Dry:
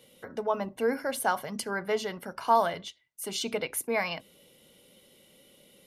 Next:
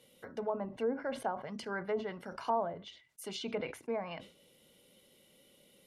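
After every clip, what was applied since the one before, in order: treble ducked by the level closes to 740 Hz, closed at -23.5 dBFS; sustainer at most 130 dB/s; gain -5.5 dB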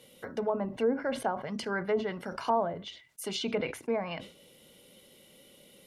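dynamic EQ 840 Hz, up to -3 dB, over -45 dBFS, Q 0.8; gain +7 dB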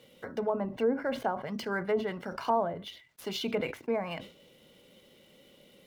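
median filter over 5 samples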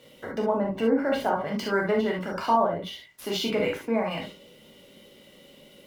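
reverb, pre-delay 3 ms, DRR -1 dB; gain +3 dB

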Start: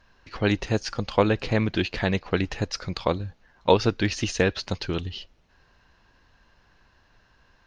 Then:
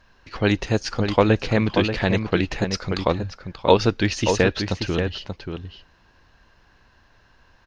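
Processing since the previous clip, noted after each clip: outdoor echo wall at 100 m, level -6 dB; gain +3 dB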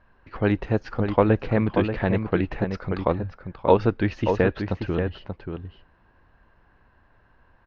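LPF 1700 Hz 12 dB/oct; gain -1.5 dB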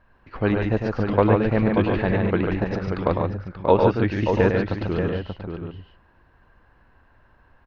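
loudspeakers at several distances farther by 35 m -6 dB, 49 m -4 dB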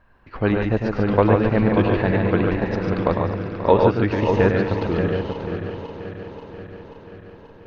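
regenerating reverse delay 0.267 s, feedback 80%, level -12 dB; gain +1.5 dB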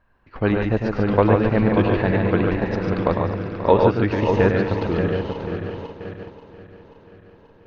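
gate -33 dBFS, range -6 dB

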